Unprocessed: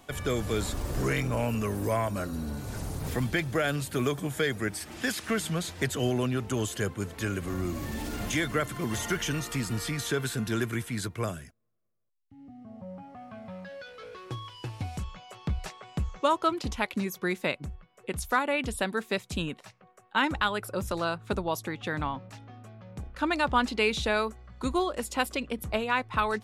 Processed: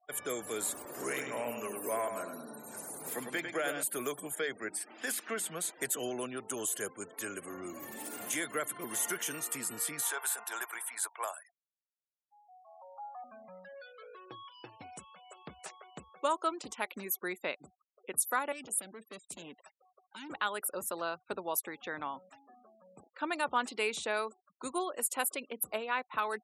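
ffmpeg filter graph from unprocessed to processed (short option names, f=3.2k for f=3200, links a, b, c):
-filter_complex "[0:a]asettb=1/sr,asplit=3[a][b][c];[a]atrim=end=0.854[d];[b]atrim=start=0.85:end=3.83,asetpts=PTS-STARTPTS,afade=t=in:d=0.004:c=qsin,afade=t=out:st=2.976:d=0.004:c=qsin,highpass=140,aecho=1:1:101|202|303|404|505|606:0.473|0.237|0.118|0.0591|0.0296|0.0148,atrim=end_sample=131418,adynamicequalizer=threshold=0.00398:dfrequency=7500:dqfactor=0.7:tfrequency=7500:tqfactor=0.7:attack=5:release=100:ratio=0.375:range=2.5:mode=cutabove:tftype=highshelf[e];[c]atrim=start=3.826[f];[d][e]acrossfade=d=0.004:c1=hsin:c2=qsin[g];[g][f]acrossfade=d=0.004:c1=qsin:c2=hsin,asettb=1/sr,asplit=3[h][i][j];[h]atrim=end=4.354[k];[i]atrim=start=4.35:end=5.53,asetpts=PTS-STARTPTS,afade=t=in:d=0.004:c=qsin,afade=t=out:st=1.176:d=0.004:c=qsin,bandreject=f=50:t=h:w=6,bandreject=f=100:t=h:w=6,bandreject=f=150:t=h:w=6,bandreject=f=200:t=h:w=6,bandreject=f=250:t=h:w=6,bandreject=f=300:t=h:w=6,bandreject=f=350:t=h:w=6,adynamicequalizer=threshold=0.00316:dfrequency=6400:dqfactor=0.7:tfrequency=6400:tqfactor=0.7:attack=5:release=100:ratio=0.375:range=3.5:mode=cutabove:tftype=highshelf[l];[j]atrim=start=5.526[m];[k][l]acrossfade=d=0.004:c1=hsin:c2=qsin[n];[n][m]acrossfade=d=0.004:c1=qsin:c2=hsin,asettb=1/sr,asplit=3[o][p][q];[o]atrim=end=10.024[r];[p]atrim=start=10.02:end=13.24,asetpts=PTS-STARTPTS,afade=t=in:d=0.004:c=qsin,afade=t=out:st=3.216:d=0.004:c=qsin,highpass=f=850:t=q:w=3.8,asoftclip=type=hard:threshold=-22.5dB[s];[q]atrim=start=13.236[t];[r][s]acrossfade=d=0.004:c1=hsin:c2=qsin[u];[u][t]acrossfade=d=0.004:c1=qsin:c2=hsin,asettb=1/sr,asplit=3[v][w][x];[v]atrim=end=18.524[y];[w]atrim=start=18.52:end=20.3,asetpts=PTS-STARTPTS,afade=t=in:d=0.004:c=qsin,afade=t=out:st=1.776:d=0.004:c=qsin,lowshelf=f=89:g=2,acrossover=split=340|3000[z][aa][ab];[aa]acompressor=threshold=-39dB:ratio=10:attack=3.2:release=140:knee=2.83:detection=peak[ac];[z][ac][ab]amix=inputs=3:normalize=0,asoftclip=type=hard:threshold=-34dB[ad];[x]atrim=start=20.296[ae];[y][ad]acrossfade=d=0.004:c1=hsin:c2=qsin[af];[af][ae]acrossfade=d=0.004:c1=qsin:c2=hsin,highpass=360,afftfilt=real='re*gte(hypot(re,im),0.00562)':imag='im*gte(hypot(re,im),0.00562)':win_size=1024:overlap=0.75,highshelf=f=7k:t=q:w=1.5:g=12.5,volume=-5.5dB"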